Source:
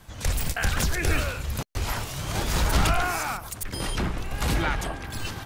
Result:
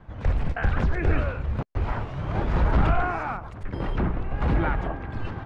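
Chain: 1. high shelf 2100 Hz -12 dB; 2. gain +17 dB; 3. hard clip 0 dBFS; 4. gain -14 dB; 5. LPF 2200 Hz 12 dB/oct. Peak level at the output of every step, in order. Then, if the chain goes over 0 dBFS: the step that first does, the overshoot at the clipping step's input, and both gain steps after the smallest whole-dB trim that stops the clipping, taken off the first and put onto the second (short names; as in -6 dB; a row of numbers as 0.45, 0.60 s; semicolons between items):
-11.5, +5.5, 0.0, -14.0, -13.5 dBFS; step 2, 5.5 dB; step 2 +11 dB, step 4 -8 dB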